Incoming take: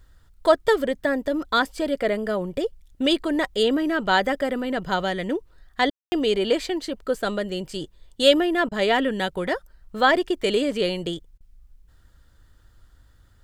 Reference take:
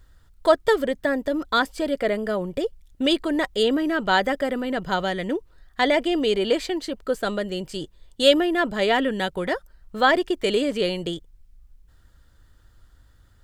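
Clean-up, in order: room tone fill 5.9–6.12; interpolate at 5.9/8.69/11.38, 24 ms

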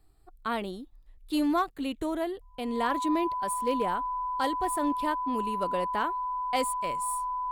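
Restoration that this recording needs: clip repair -19 dBFS; notch 1000 Hz, Q 30

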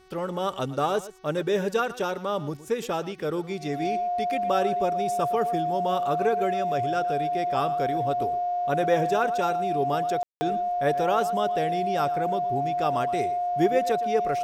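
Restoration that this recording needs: de-hum 373.7 Hz, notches 17; notch 710 Hz, Q 30; room tone fill 10.23–10.41; inverse comb 0.116 s -16 dB

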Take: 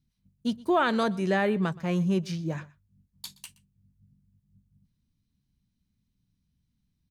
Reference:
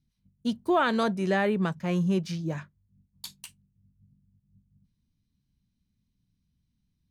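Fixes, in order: inverse comb 0.122 s -22 dB

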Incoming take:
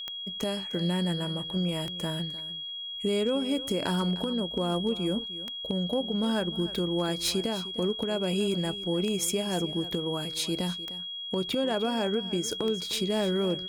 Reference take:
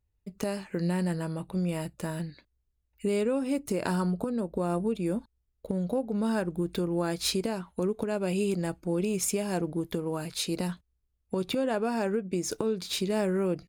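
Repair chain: clip repair -19 dBFS; de-click; notch 3300 Hz, Q 30; inverse comb 0.304 s -16 dB

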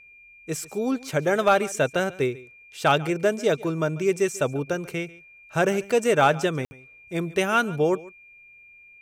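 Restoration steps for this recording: clip repair -9 dBFS; notch 2400 Hz, Q 30; room tone fill 6.65–6.71; inverse comb 0.142 s -20.5 dB

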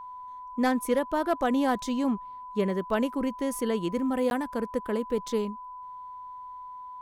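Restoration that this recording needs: clip repair -16 dBFS; notch 1000 Hz, Q 30; interpolate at 4.3, 11 ms

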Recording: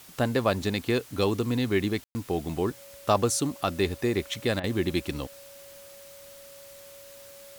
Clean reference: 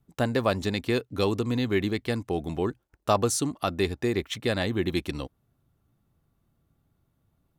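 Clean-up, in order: notch 560 Hz, Q 30; room tone fill 2.04–2.15; interpolate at 4.6, 37 ms; noise print and reduce 24 dB

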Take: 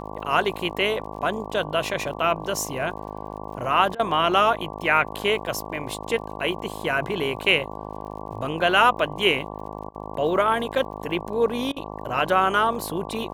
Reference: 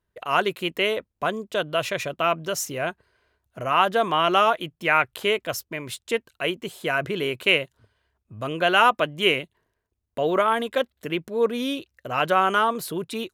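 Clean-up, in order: de-click; de-hum 52.1 Hz, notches 22; interpolate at 3.95/9.9/11.72, 43 ms

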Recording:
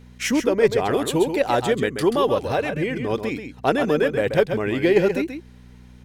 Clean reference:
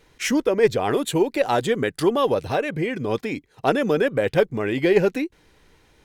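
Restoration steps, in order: de-hum 61.3 Hz, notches 4; inverse comb 0.133 s -8 dB

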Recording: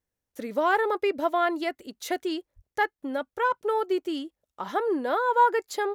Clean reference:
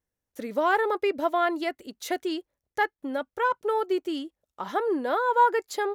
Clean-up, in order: 2.55–2.67 HPF 140 Hz 24 dB/oct

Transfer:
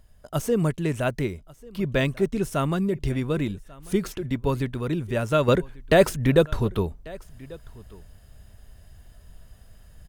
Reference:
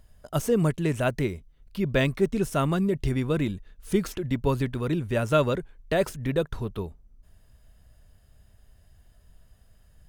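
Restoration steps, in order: inverse comb 1.142 s -22.5 dB; gain correction -7.5 dB, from 5.48

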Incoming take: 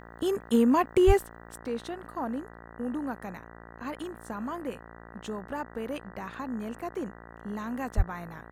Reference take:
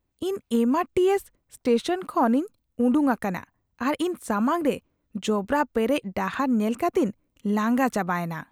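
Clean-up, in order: de-hum 57.2 Hz, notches 34; de-plosive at 1.06/7.96; gain correction +12 dB, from 1.58

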